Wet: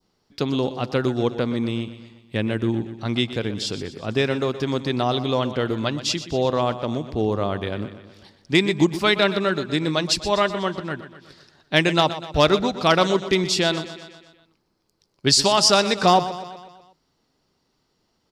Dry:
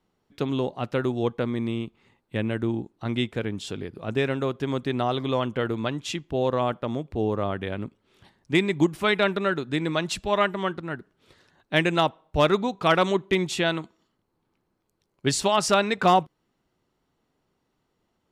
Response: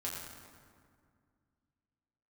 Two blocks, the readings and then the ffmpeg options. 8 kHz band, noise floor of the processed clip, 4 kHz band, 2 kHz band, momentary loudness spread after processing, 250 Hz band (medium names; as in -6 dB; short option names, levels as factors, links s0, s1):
+8.0 dB, -70 dBFS, +8.5 dB, +2.5 dB, 12 LU, +3.5 dB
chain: -filter_complex "[0:a]equalizer=f=4900:w=2.1:g=13.5,asplit=2[s0][s1];[s1]aecho=0:1:123|246|369|492|615|738:0.224|0.121|0.0653|0.0353|0.019|0.0103[s2];[s0][s2]amix=inputs=2:normalize=0,adynamicequalizer=threshold=0.0141:dfrequency=2000:dqfactor=0.9:tfrequency=2000:tqfactor=0.9:attack=5:release=100:ratio=0.375:range=2:mode=cutabove:tftype=bell,volume=1.41"